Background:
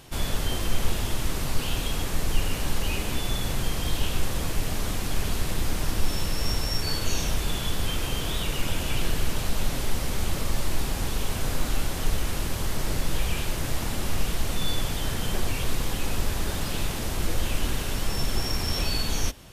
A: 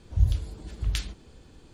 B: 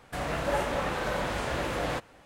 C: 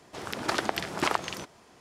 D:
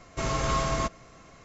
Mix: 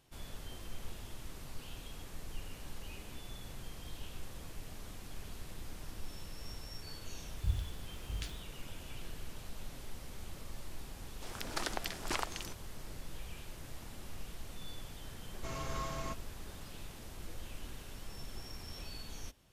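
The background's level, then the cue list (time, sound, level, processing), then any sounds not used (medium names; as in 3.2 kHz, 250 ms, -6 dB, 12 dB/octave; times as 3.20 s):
background -19.5 dB
7.27 s: add A -12 dB + send-on-delta sampling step -44.5 dBFS
11.08 s: add C -11.5 dB + treble shelf 4 kHz +10 dB
15.26 s: add D -13.5 dB
not used: B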